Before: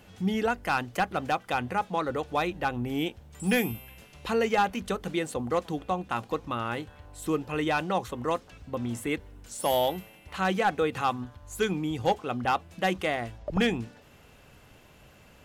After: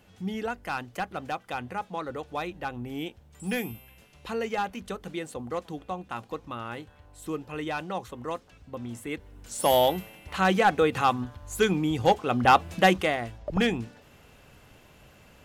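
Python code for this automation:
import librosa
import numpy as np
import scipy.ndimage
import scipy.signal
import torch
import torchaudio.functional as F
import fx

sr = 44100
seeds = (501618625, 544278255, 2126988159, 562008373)

y = fx.gain(x, sr, db=fx.line((9.08, -5.0), (9.6, 4.0), (12.22, 4.0), (12.7, 10.5), (13.18, 0.5)))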